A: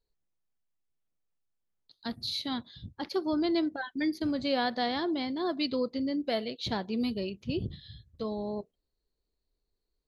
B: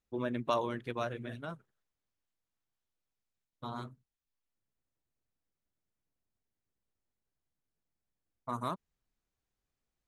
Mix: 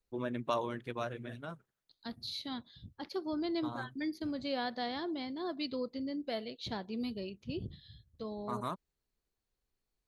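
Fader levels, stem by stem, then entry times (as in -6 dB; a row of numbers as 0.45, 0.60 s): -7.0, -2.0 dB; 0.00, 0.00 s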